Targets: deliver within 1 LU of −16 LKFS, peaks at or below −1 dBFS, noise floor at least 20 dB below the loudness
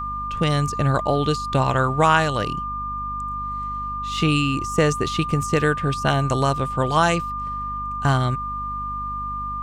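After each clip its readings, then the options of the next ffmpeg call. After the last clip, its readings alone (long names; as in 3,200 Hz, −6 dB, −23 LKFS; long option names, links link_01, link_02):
mains hum 50 Hz; hum harmonics up to 250 Hz; level of the hum −32 dBFS; interfering tone 1,200 Hz; level of the tone −26 dBFS; integrated loudness −22.0 LKFS; sample peak −4.0 dBFS; target loudness −16.0 LKFS
→ -af "bandreject=frequency=50:width_type=h:width=4,bandreject=frequency=100:width_type=h:width=4,bandreject=frequency=150:width_type=h:width=4,bandreject=frequency=200:width_type=h:width=4,bandreject=frequency=250:width_type=h:width=4"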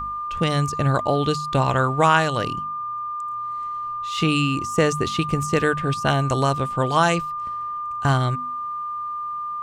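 mains hum none found; interfering tone 1,200 Hz; level of the tone −26 dBFS
→ -af "bandreject=frequency=1200:width=30"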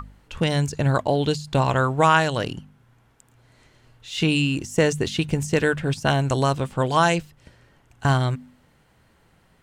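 interfering tone none found; integrated loudness −22.0 LKFS; sample peak −4.0 dBFS; target loudness −16.0 LKFS
→ -af "volume=6dB,alimiter=limit=-1dB:level=0:latency=1"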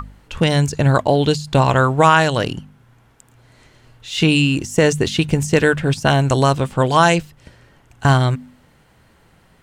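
integrated loudness −16.5 LKFS; sample peak −1.0 dBFS; background noise floor −54 dBFS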